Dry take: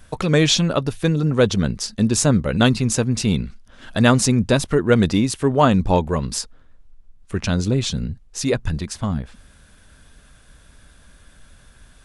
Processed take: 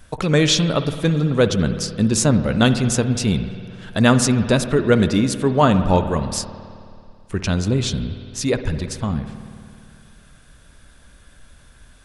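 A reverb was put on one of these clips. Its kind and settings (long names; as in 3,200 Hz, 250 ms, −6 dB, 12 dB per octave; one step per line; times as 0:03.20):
spring reverb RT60 2.4 s, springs 54 ms, chirp 35 ms, DRR 9.5 dB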